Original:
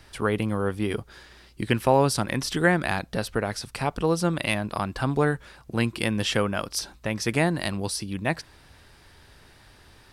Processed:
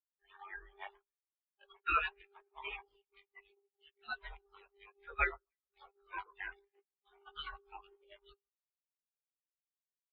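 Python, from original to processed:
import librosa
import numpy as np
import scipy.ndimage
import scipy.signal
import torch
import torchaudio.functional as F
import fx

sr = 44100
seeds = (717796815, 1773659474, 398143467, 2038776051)

p1 = fx.frame_reverse(x, sr, frame_ms=40.0)
p2 = scipy.signal.sosfilt(scipy.signal.butter(2, 64.0, 'highpass', fs=sr, output='sos'), p1)
p3 = fx.spec_gate(p2, sr, threshold_db=-30, keep='weak')
p4 = fx.peak_eq(p3, sr, hz=130.0, db=-12.5, octaves=0.94)
p5 = fx.dmg_buzz(p4, sr, base_hz=400.0, harmonics=15, level_db=-69.0, tilt_db=-4, odd_only=False)
p6 = fx.clip_asym(p5, sr, top_db=-58.5, bottom_db=-36.0)
p7 = p5 + F.gain(torch.from_numpy(p6), -6.5).numpy()
p8 = fx.quant_companded(p7, sr, bits=4)
p9 = fx.air_absorb(p8, sr, metres=200.0)
p10 = p9 + fx.echo_alternate(p9, sr, ms=145, hz=1500.0, feedback_pct=71, wet_db=-12.5, dry=0)
p11 = fx.spectral_expand(p10, sr, expansion=4.0)
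y = F.gain(torch.from_numpy(p11), 14.0).numpy()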